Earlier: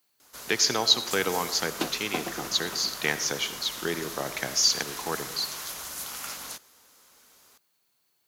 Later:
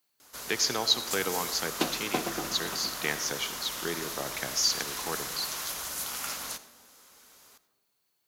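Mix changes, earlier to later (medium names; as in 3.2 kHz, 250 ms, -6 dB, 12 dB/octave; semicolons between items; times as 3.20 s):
speech -4.0 dB; background: send on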